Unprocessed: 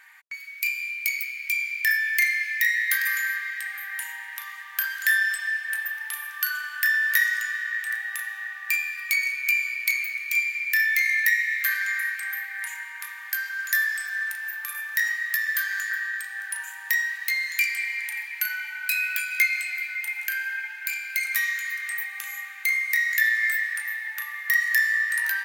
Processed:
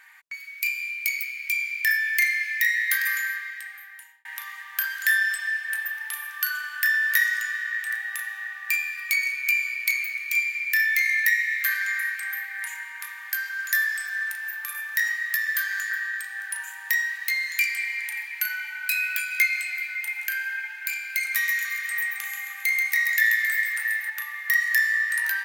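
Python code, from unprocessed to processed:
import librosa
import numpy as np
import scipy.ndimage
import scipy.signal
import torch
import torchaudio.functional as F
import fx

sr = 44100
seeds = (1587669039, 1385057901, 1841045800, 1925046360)

y = fx.echo_split(x, sr, split_hz=1800.0, low_ms=301, high_ms=134, feedback_pct=52, wet_db=-5.5, at=(21.31, 24.1))
y = fx.edit(y, sr, fx.fade_out_span(start_s=3.1, length_s=1.15), tone=tone)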